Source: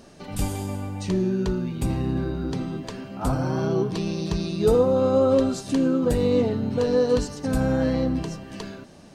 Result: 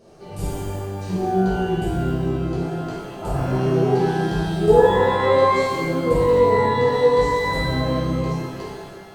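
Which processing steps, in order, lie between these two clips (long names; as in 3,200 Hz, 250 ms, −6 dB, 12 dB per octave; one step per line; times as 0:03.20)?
drawn EQ curve 110 Hz 0 dB, 170 Hz +5 dB, 250 Hz −9 dB, 380 Hz +7 dB, 1,400 Hz −4 dB
reverb with rising layers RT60 1.3 s, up +12 semitones, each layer −8 dB, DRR −7.5 dB
level −8 dB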